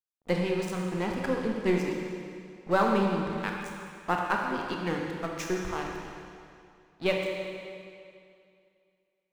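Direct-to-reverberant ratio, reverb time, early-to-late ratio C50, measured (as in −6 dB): −0.5 dB, 2.4 s, 1.0 dB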